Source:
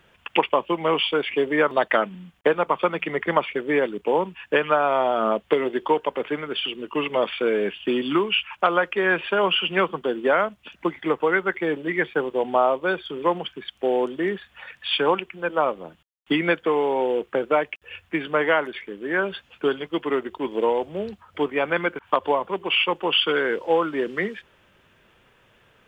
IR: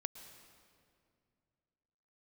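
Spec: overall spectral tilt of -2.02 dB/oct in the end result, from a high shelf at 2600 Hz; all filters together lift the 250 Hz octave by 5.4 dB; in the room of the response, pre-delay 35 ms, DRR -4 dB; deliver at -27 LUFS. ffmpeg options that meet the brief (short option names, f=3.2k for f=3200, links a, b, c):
-filter_complex "[0:a]equalizer=f=250:t=o:g=7.5,highshelf=f=2.6k:g=6,asplit=2[a][b];[1:a]atrim=start_sample=2205,adelay=35[c];[b][c]afir=irnorm=-1:irlink=0,volume=6dB[d];[a][d]amix=inputs=2:normalize=0,volume=-11.5dB"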